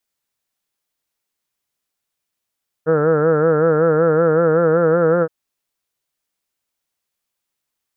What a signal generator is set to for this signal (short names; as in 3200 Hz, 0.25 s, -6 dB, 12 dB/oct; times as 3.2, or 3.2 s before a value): formant-synthesis vowel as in heard, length 2.42 s, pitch 154 Hz, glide +1.5 st